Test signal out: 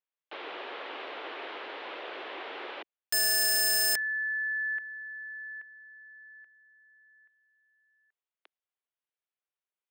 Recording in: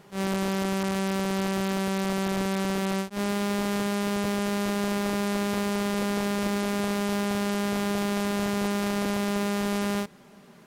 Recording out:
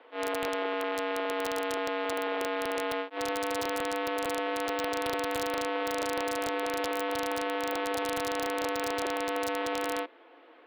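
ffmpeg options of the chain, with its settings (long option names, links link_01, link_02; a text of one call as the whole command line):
ffmpeg -i in.wav -af "acontrast=37,highpass=frequency=270:width_type=q:width=0.5412,highpass=frequency=270:width_type=q:width=1.307,lowpass=frequency=3400:width_type=q:width=0.5176,lowpass=frequency=3400:width_type=q:width=0.7071,lowpass=frequency=3400:width_type=q:width=1.932,afreqshift=88,aeval=exprs='(mod(6.31*val(0)+1,2)-1)/6.31':channel_layout=same,volume=-6dB" out.wav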